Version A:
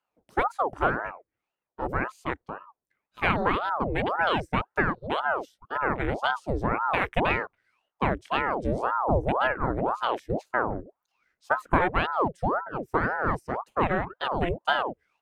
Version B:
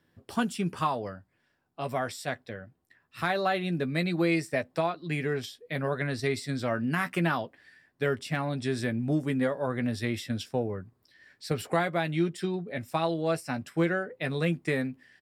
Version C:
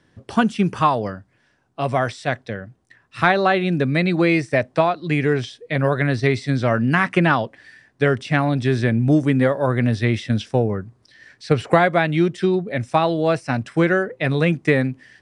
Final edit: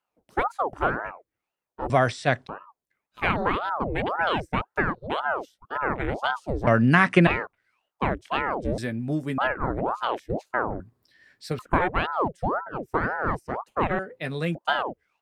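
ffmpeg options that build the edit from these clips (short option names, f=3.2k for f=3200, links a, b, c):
-filter_complex "[2:a]asplit=2[a][b];[1:a]asplit=3[c][d][e];[0:a]asplit=6[f][g][h][i][j][k];[f]atrim=end=1.902[l];[a]atrim=start=1.898:end=2.472[m];[g]atrim=start=2.468:end=6.672[n];[b]atrim=start=6.668:end=7.272[o];[h]atrim=start=7.268:end=8.782[p];[c]atrim=start=8.778:end=9.382[q];[i]atrim=start=9.378:end=10.802[r];[d]atrim=start=10.798:end=11.592[s];[j]atrim=start=11.588:end=13.992[t];[e]atrim=start=13.988:end=14.552[u];[k]atrim=start=14.548[v];[l][m]acrossfade=d=0.004:c1=hsin:c2=hsin[w];[w][n]acrossfade=d=0.004:c1=hsin:c2=hsin[x];[x][o]acrossfade=d=0.004:c1=hsin:c2=hsin[y];[y][p]acrossfade=d=0.004:c1=hsin:c2=hsin[z];[z][q]acrossfade=d=0.004:c1=hsin:c2=hsin[aa];[aa][r]acrossfade=d=0.004:c1=hsin:c2=hsin[ab];[ab][s]acrossfade=d=0.004:c1=hsin:c2=hsin[ac];[ac][t]acrossfade=d=0.004:c1=hsin:c2=hsin[ad];[ad][u]acrossfade=d=0.004:c1=hsin:c2=hsin[ae];[ae][v]acrossfade=d=0.004:c1=hsin:c2=hsin"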